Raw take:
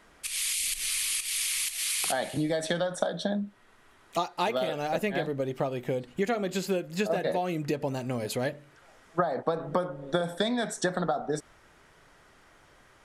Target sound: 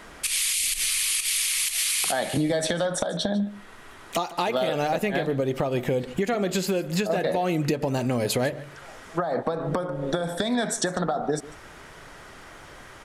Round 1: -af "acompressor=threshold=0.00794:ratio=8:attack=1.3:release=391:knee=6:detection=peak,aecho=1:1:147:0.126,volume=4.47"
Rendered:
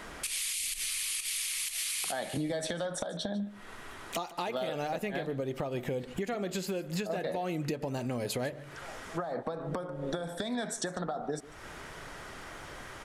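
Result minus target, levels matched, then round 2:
compression: peak gain reduction +9 dB
-af "acompressor=threshold=0.0266:ratio=8:attack=1.3:release=391:knee=6:detection=peak,aecho=1:1:147:0.126,volume=4.47"

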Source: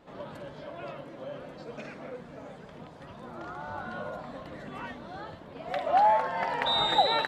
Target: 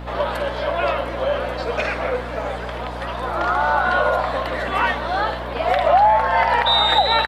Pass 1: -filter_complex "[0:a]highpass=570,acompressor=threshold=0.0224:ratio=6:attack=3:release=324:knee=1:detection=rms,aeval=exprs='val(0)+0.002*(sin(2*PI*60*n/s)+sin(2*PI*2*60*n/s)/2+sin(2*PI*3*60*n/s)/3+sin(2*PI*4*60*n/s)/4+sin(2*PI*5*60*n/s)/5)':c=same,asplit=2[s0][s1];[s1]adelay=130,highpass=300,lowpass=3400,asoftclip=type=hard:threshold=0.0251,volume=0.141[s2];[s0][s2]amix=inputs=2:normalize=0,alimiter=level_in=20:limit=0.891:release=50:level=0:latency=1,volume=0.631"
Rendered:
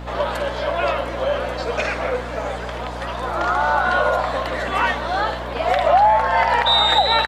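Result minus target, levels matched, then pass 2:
8 kHz band +5.0 dB
-filter_complex "[0:a]highpass=570,acompressor=threshold=0.0224:ratio=6:attack=3:release=324:knee=1:detection=rms,equalizer=f=6800:w=1.7:g=-7,aeval=exprs='val(0)+0.002*(sin(2*PI*60*n/s)+sin(2*PI*2*60*n/s)/2+sin(2*PI*3*60*n/s)/3+sin(2*PI*4*60*n/s)/4+sin(2*PI*5*60*n/s)/5)':c=same,asplit=2[s0][s1];[s1]adelay=130,highpass=300,lowpass=3400,asoftclip=type=hard:threshold=0.0251,volume=0.141[s2];[s0][s2]amix=inputs=2:normalize=0,alimiter=level_in=20:limit=0.891:release=50:level=0:latency=1,volume=0.631"

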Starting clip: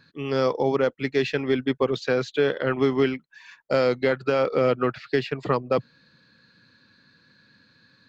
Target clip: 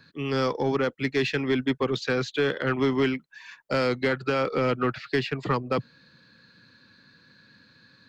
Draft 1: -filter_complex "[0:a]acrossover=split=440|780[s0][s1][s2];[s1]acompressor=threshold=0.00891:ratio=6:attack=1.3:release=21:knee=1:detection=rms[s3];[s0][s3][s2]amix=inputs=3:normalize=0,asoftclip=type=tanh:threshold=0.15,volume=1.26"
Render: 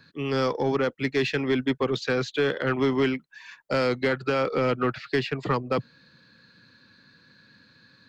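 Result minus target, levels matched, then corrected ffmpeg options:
compression: peak gain reduction -8.5 dB
-filter_complex "[0:a]acrossover=split=440|780[s0][s1][s2];[s1]acompressor=threshold=0.00266:ratio=6:attack=1.3:release=21:knee=1:detection=rms[s3];[s0][s3][s2]amix=inputs=3:normalize=0,asoftclip=type=tanh:threshold=0.15,volume=1.26"

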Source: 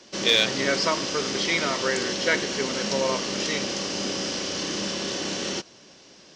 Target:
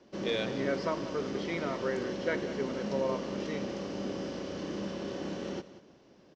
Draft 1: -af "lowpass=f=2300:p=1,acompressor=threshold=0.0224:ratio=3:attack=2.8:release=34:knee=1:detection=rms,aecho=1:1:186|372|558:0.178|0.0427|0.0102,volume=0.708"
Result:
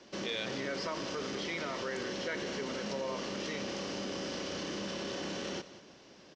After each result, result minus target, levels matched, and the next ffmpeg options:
compression: peak gain reduction +11.5 dB; 2 kHz band +3.0 dB
-af "lowpass=f=2300:p=1,aecho=1:1:186|372|558:0.178|0.0427|0.0102,volume=0.708"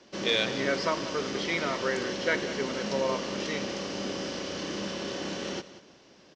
2 kHz band +4.0 dB
-af "lowpass=f=580:p=1,aecho=1:1:186|372|558:0.178|0.0427|0.0102,volume=0.708"

